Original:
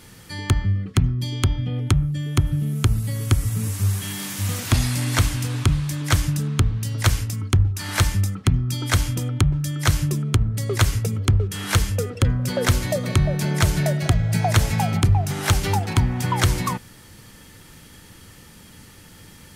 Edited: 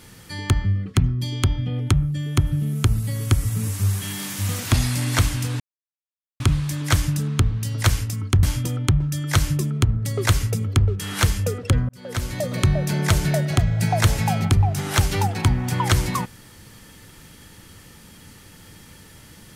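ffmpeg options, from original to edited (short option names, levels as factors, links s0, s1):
-filter_complex "[0:a]asplit=4[s0][s1][s2][s3];[s0]atrim=end=5.6,asetpts=PTS-STARTPTS,afade=t=out:st=5.596:d=0.004:c=hsin,apad=pad_dur=0.8[s4];[s1]atrim=start=5.6:end=7.632,asetpts=PTS-STARTPTS,afade=t=in:d=0.004:c=hsin[s5];[s2]atrim=start=8.948:end=12.41,asetpts=PTS-STARTPTS,afade=t=out:st=3.458:d=0.004:c=hsin[s6];[s3]atrim=start=12.41,asetpts=PTS-STARTPTS,afade=t=in:d=0.72[s7];[s4][s5]concat=n=2:v=0:a=1[s8];[s6][s7]concat=n=2:v=0:a=1[s9];[s8][s9]acrossfade=d=0.004:c1=hsin:c2=hsin"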